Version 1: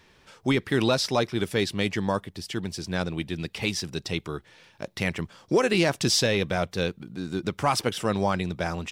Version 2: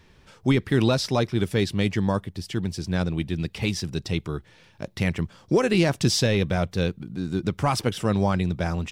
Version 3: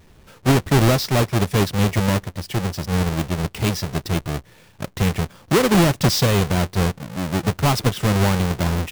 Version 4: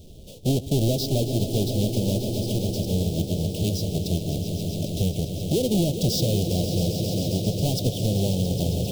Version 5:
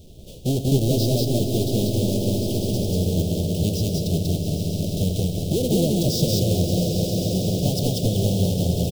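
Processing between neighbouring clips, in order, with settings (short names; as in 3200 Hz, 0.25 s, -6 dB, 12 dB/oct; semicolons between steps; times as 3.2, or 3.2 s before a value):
low shelf 220 Hz +11 dB; gain -1.5 dB
half-waves squared off
swelling echo 0.134 s, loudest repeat 5, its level -13 dB; compressor 2:1, threshold -34 dBFS, peak gain reduction 12.5 dB; elliptic band-stop 630–3200 Hz, stop band 60 dB; gain +5.5 dB
on a send: loudspeakers at several distances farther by 34 m -11 dB, 65 m -1 dB; on the sum: dynamic EQ 1700 Hz, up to -6 dB, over -50 dBFS, Q 1.1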